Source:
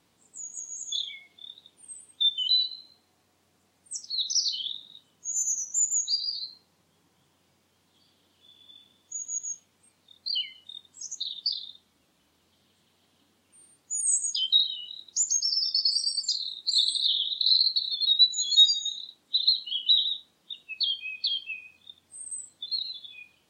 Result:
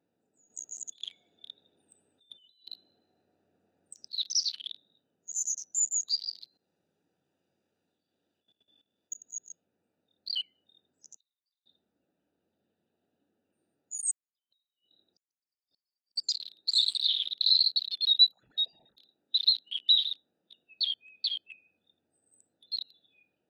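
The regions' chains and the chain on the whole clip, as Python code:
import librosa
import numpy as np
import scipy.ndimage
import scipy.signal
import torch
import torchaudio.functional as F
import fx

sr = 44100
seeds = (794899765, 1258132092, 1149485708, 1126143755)

y = fx.chain(x, sr, fx.over_compress(threshold_db=-37.0, ratio=-1.0),
    fx.echo_feedback(ms=152, feedback_pct=42, wet_db=-15.5), at=(0.5, 4.08))
y = fx.chain(y, sr, fx.high_shelf(hz=2600.0, db=11.5),
    fx.level_steps(step_db=16),
    fx.leveller(passes=1), at=(6.47, 9.14))
y = fx.chain(y, sr, fx.steep_highpass(hz=2800.0, slope=36),
    fx.gate_flip(shuts_db=-36.0, range_db=-35), at=(11.16, 11.66))
y = fx.chain(y, sr, fx.chopper(hz=2.5, depth_pct=60, duty_pct=70),
    fx.gate_flip(shuts_db=-24.0, range_db=-35),
    fx.air_absorb(metres=120.0), at=(14.11, 16.16))
y = fx.chain(y, sr, fx.backlash(play_db=-29.0),
    fx.env_phaser(low_hz=260.0, high_hz=1500.0, full_db=-21.5),
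    fx.air_absorb(metres=350.0), at=(18.32, 18.97))
y = fx.wiener(y, sr, points=41)
y = fx.highpass(y, sr, hz=590.0, slope=6)
y = fx.high_shelf(y, sr, hz=8900.0, db=-5.0)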